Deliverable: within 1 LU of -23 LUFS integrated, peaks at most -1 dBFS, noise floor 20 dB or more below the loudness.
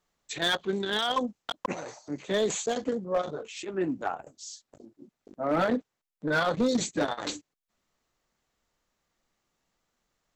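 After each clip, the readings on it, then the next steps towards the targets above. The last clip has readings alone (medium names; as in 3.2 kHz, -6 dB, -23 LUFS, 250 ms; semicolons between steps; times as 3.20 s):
clipped samples 0.7%; clipping level -19.5 dBFS; loudness -30.0 LUFS; peak level -19.5 dBFS; loudness target -23.0 LUFS
-> clip repair -19.5 dBFS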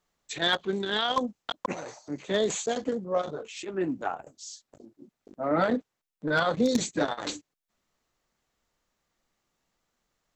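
clipped samples 0.0%; loudness -29.5 LUFS; peak level -10.5 dBFS; loudness target -23.0 LUFS
-> trim +6.5 dB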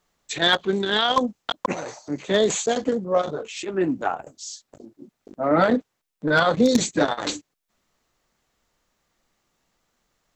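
loudness -23.0 LUFS; peak level -4.0 dBFS; noise floor -77 dBFS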